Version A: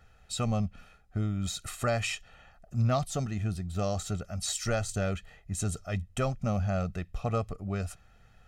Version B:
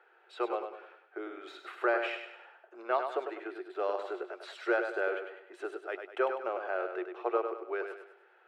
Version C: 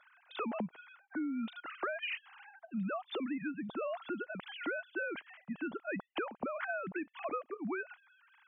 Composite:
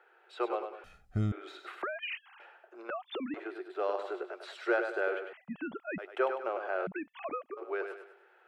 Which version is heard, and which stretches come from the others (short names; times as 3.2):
B
0.84–1.32 from A
1.82–2.4 from C
2.9–3.34 from C
5.33–5.98 from C
6.87–7.57 from C